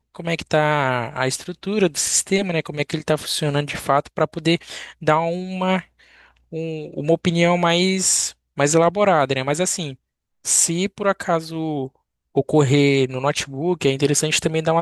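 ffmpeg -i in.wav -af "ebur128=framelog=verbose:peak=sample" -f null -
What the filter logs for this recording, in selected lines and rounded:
Integrated loudness:
  I:         -20.0 LUFS
  Threshold: -30.3 LUFS
Loudness range:
  LRA:         3.8 LU
  Threshold: -40.4 LUFS
  LRA low:   -22.3 LUFS
  LRA high:  -18.6 LUFS
Sample peak:
  Peak:       -1.2 dBFS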